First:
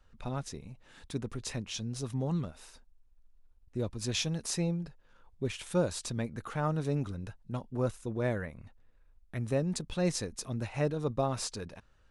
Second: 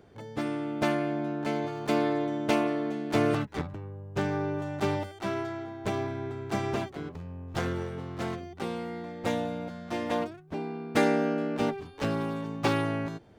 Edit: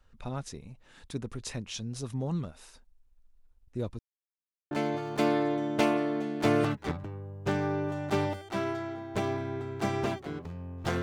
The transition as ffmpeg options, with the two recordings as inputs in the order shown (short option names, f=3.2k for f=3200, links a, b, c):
-filter_complex "[0:a]apad=whole_dur=11.02,atrim=end=11.02,asplit=2[a][b];[a]atrim=end=3.99,asetpts=PTS-STARTPTS,afade=t=out:st=3.986:d=0.004:c=hsin[c];[b]atrim=start=3.99:end=4.71,asetpts=PTS-STARTPTS,volume=0[d];[1:a]atrim=start=1.41:end=7.72,asetpts=PTS-STARTPTS,afade=t=in:d=0.004:c=hsin[e];[c][d][e]concat=n=3:v=0:a=1"